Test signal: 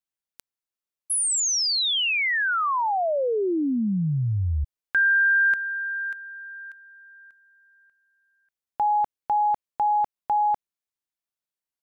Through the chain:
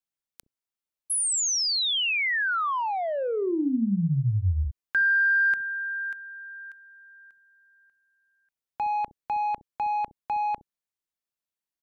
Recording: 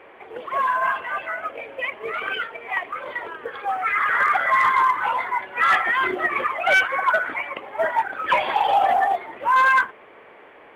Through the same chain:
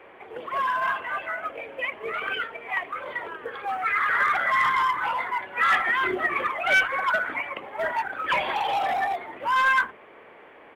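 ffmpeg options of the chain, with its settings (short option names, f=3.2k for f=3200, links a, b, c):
-filter_complex "[0:a]acrossover=split=360|1200[a][b][c];[a]aecho=1:1:35|65:0.398|0.596[d];[b]asoftclip=type=tanh:threshold=-25dB[e];[d][e][c]amix=inputs=3:normalize=0,volume=-2dB"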